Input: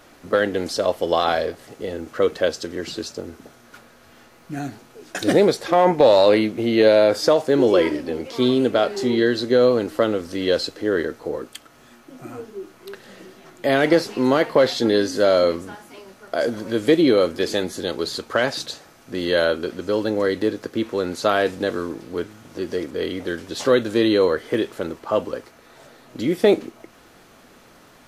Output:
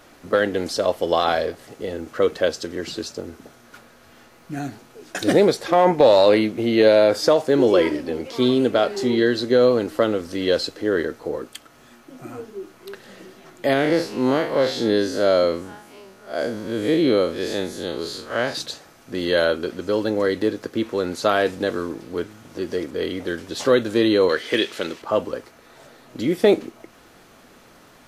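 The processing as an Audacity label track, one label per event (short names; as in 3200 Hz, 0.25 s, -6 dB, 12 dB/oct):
13.730000	18.550000	time blur width 96 ms
24.290000	25.020000	weighting filter D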